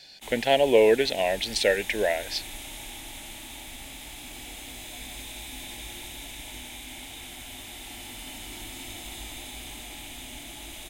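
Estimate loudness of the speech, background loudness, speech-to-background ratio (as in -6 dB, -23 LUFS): -23.5 LUFS, -38.5 LUFS, 15.0 dB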